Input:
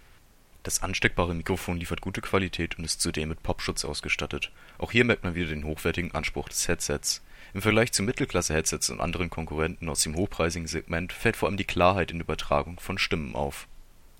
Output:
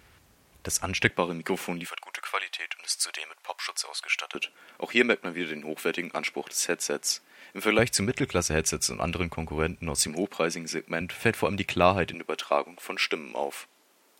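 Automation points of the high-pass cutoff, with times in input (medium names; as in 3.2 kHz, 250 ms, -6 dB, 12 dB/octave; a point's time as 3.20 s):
high-pass 24 dB/octave
47 Hz
from 1.10 s 180 Hz
from 1.87 s 710 Hz
from 4.35 s 230 Hz
from 7.79 s 58 Hz
from 10.08 s 190 Hz
from 11.01 s 87 Hz
from 12.14 s 280 Hz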